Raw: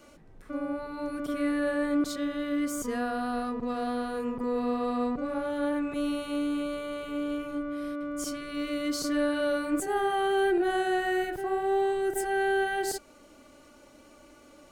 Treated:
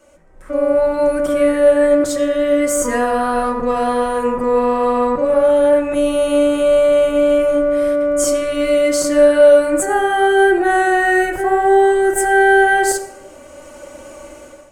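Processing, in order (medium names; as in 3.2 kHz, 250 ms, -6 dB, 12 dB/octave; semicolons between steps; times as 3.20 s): ten-band graphic EQ 125 Hz +9 dB, 250 Hz -6 dB, 500 Hz +8 dB, 1 kHz +6 dB, 2 kHz +5 dB, 4 kHz -5 dB, 8 kHz +10 dB; level rider gain up to 15.5 dB; reverberation RT60 0.90 s, pre-delay 3 ms, DRR 1.5 dB; trim -5.5 dB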